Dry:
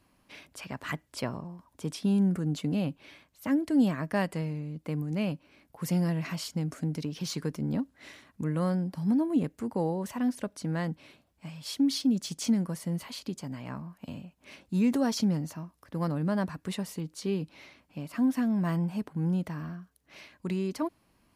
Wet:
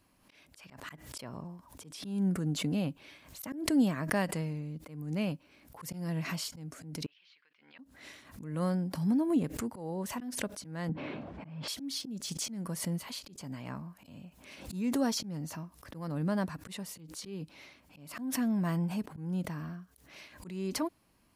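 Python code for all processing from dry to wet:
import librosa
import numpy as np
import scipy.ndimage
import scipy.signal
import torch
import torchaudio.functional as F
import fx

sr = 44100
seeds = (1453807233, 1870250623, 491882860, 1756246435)

y = fx.chain(x, sr, fx.ladder_bandpass(hz=3100.0, resonance_pct=35),
    fx.air_absorb(metres=380.0), at=(7.06, 7.79))
y = fx.chain(y, sr, fx.bandpass_edges(low_hz=180.0, high_hz=2100.0),
    fx.tilt_eq(slope=-2.5),
    fx.env_flatten(amount_pct=70), at=(10.89, 11.68))
y = fx.high_shelf(y, sr, hz=5000.0, db=4.5)
y = fx.auto_swell(y, sr, attack_ms=248.0)
y = fx.pre_swell(y, sr, db_per_s=79.0)
y = y * 10.0 ** (-2.5 / 20.0)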